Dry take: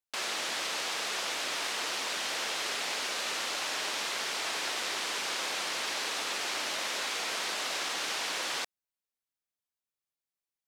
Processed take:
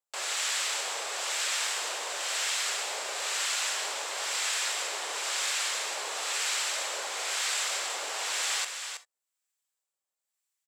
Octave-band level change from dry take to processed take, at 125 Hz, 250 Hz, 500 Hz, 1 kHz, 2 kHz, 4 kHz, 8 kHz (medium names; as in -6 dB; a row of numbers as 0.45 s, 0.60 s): no reading, -10.5 dB, -0.5 dB, +0.5 dB, +1.0 dB, +1.0 dB, +6.5 dB